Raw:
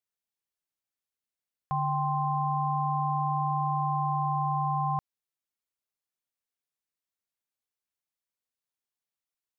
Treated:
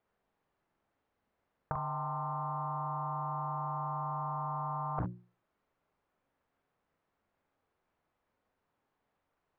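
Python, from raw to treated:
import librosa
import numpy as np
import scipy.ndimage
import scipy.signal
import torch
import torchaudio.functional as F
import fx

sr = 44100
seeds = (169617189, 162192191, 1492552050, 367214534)

y = scipy.signal.sosfilt(scipy.signal.butter(2, 1200.0, 'lowpass', fs=sr, output='sos'), x)
y = fx.hum_notches(y, sr, base_hz=60, count=6)
y = fx.over_compress(y, sr, threshold_db=-38.0, ratio=-0.5)
y = fx.room_early_taps(y, sr, ms=(44, 55, 69), db=(-4.5, -12.5, -17.0))
y = fx.doppler_dist(y, sr, depth_ms=0.69)
y = F.gain(torch.from_numpy(y), 6.5).numpy()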